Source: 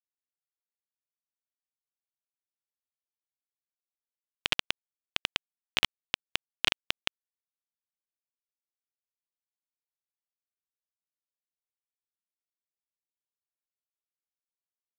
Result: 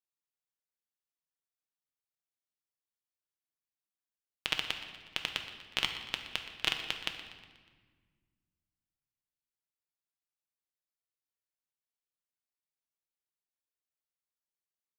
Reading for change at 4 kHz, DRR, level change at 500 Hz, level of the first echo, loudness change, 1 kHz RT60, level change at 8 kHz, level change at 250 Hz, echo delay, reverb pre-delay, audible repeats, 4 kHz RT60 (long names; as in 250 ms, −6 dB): −3.0 dB, 4.5 dB, −3.5 dB, −15.0 dB, −3.0 dB, 1.5 s, −3.5 dB, −2.5 dB, 121 ms, 6 ms, 4, 1.2 s